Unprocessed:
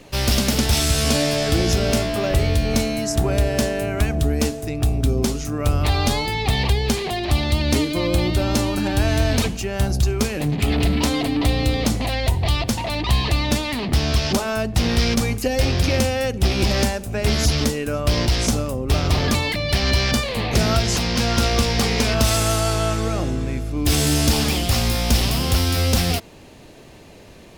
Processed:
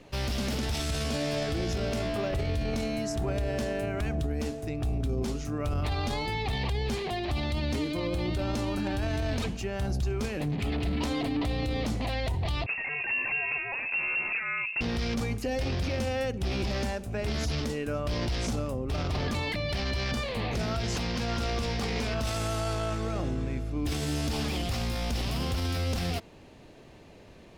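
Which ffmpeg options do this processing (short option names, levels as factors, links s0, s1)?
-filter_complex "[0:a]asettb=1/sr,asplit=3[s0][s1][s2];[s0]atrim=end=12.664[s3];[s1]atrim=start=12.66:end=14.81,asetpts=PTS-STARTPTS,afade=t=in:d=0.004:c=qsin,afade=t=out:st=2.146:d=0.004:c=qsin,lowpass=f=2400:t=q:w=0.5098,lowpass=f=2400:t=q:w=0.6013,lowpass=f=2400:t=q:w=0.9,lowpass=f=2400:t=q:w=2.563,afreqshift=-2800[s4];[s2]atrim=start=14.806[s5];[s3][s4]acrossfade=d=0.004:c1=hsin:c2=qsin[s6];[s6][s5]acrossfade=d=0.004:c1=qsin:c2=hsin,lowpass=f=3800:p=1,alimiter=limit=0.168:level=0:latency=1:release=11,volume=0.447"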